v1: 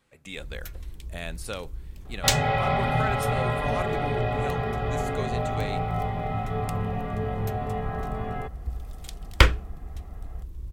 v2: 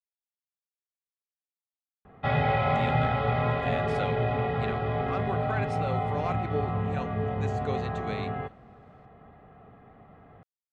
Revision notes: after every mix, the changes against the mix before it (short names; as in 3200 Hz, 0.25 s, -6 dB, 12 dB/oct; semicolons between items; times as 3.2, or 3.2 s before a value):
speech: entry +2.50 s; first sound: muted; master: add air absorption 150 m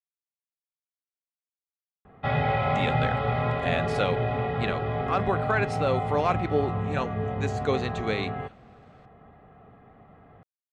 speech +8.5 dB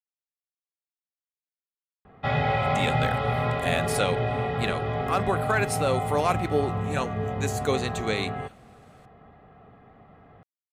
master: remove air absorption 150 m